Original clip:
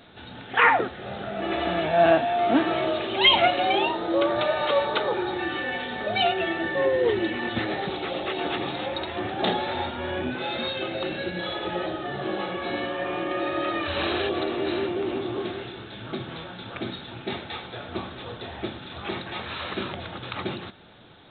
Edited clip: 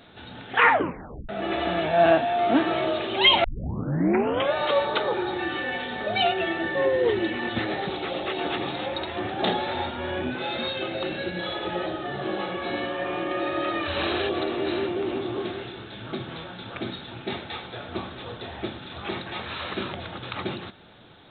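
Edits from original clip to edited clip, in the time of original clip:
0.72 s: tape stop 0.57 s
3.44 s: tape start 1.11 s

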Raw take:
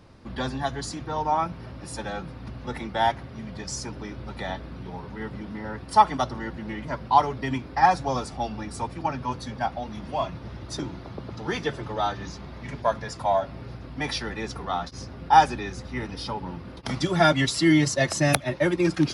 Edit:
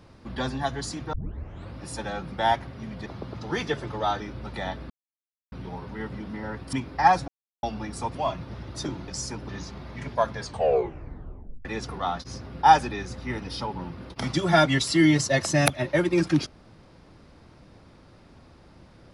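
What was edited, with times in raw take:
1.13 s: tape start 0.64 s
2.32–2.88 s: delete
3.62–4.03 s: swap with 11.02–12.16 s
4.73 s: insert silence 0.62 s
5.94–7.51 s: delete
8.06–8.41 s: mute
8.93–10.09 s: delete
13.03 s: tape stop 1.29 s

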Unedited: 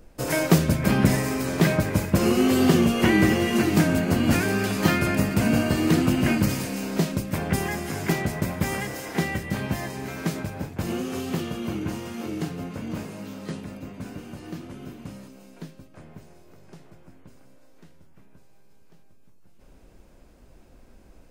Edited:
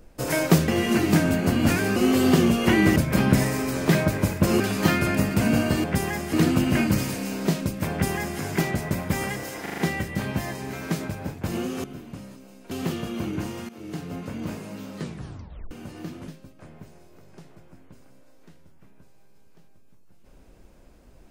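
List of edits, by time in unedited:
0.68–2.32 s: swap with 3.32–4.60 s
7.42–7.91 s: copy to 5.84 s
9.13 s: stutter 0.04 s, 5 plays
12.17–12.65 s: fade in, from -16 dB
13.48 s: tape stop 0.71 s
14.76–15.63 s: move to 11.19 s

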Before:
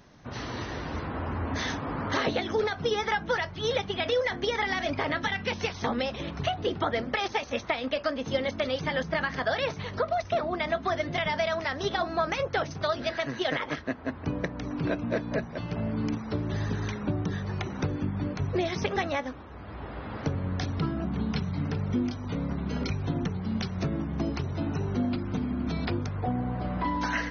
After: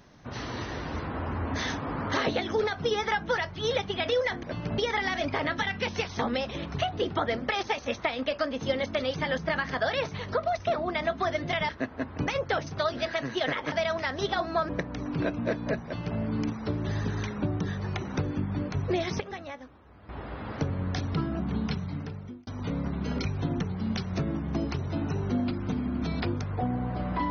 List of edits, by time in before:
11.34–12.31 s: swap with 13.76–14.34 s
15.49–15.84 s: copy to 4.43 s
18.85–19.74 s: gain -10.5 dB
21.27–22.12 s: fade out

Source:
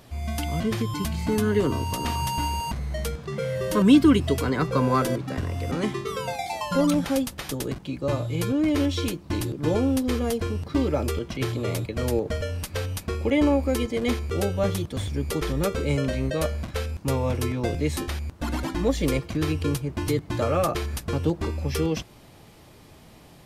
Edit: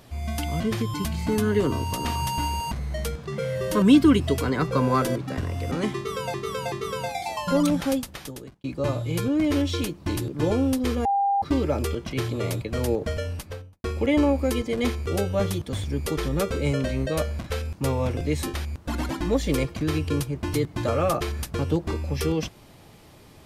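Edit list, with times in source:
5.96–6.34 s: loop, 3 plays
7.14–7.88 s: fade out
10.29–10.66 s: bleep 798 Hz -19 dBFS
12.46–13.08 s: studio fade out
17.41–17.71 s: delete

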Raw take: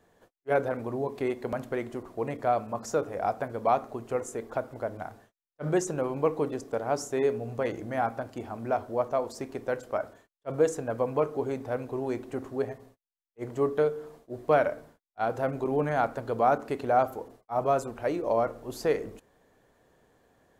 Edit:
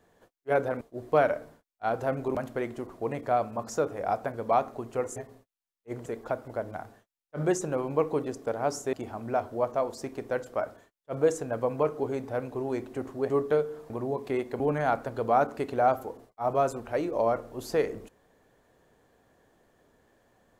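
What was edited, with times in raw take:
0.81–1.51 s: swap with 14.17–15.71 s
7.19–8.30 s: delete
12.67–13.57 s: move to 4.32 s

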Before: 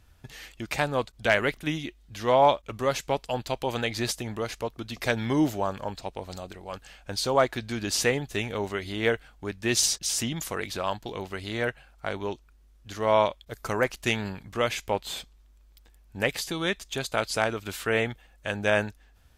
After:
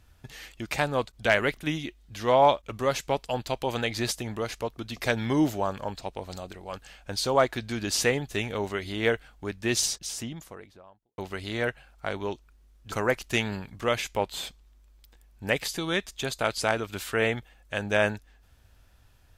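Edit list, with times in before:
9.47–11.18 s: studio fade out
12.92–13.65 s: delete

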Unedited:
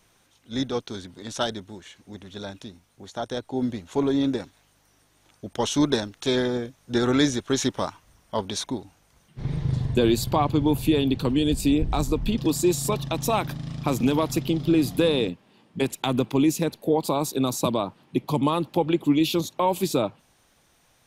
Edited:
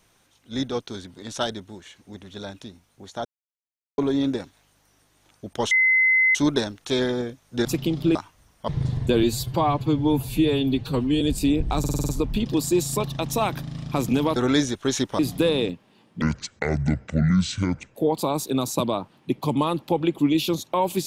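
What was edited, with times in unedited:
3.25–3.98 s: mute
5.71 s: add tone 2.05 kHz -15 dBFS 0.64 s
7.01–7.84 s: swap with 14.28–14.78 s
8.37–9.56 s: delete
10.11–11.43 s: stretch 1.5×
12.01 s: stutter 0.05 s, 7 plays
15.80–16.81 s: speed 58%

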